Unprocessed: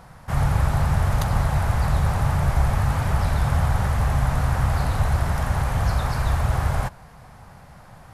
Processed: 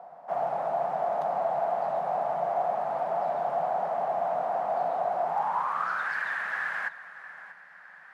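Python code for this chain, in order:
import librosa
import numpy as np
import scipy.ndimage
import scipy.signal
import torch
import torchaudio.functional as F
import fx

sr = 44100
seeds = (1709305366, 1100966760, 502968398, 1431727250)

p1 = scipy.signal.sosfilt(scipy.signal.butter(16, 150.0, 'highpass', fs=sr, output='sos'), x)
p2 = p1 + 10.0 ** (-15.5 / 20.0) * np.pad(p1, (int(636 * sr / 1000.0), 0))[:len(p1)]
p3 = (np.mod(10.0 ** (24.0 / 20.0) * p2 + 1.0, 2.0) - 1.0) / 10.0 ** (24.0 / 20.0)
p4 = p2 + (p3 * librosa.db_to_amplitude(-9.0))
p5 = fx.filter_sweep_bandpass(p4, sr, from_hz=690.0, to_hz=1700.0, start_s=5.21, end_s=6.14, q=7.7)
y = p5 * librosa.db_to_amplitude(9.0)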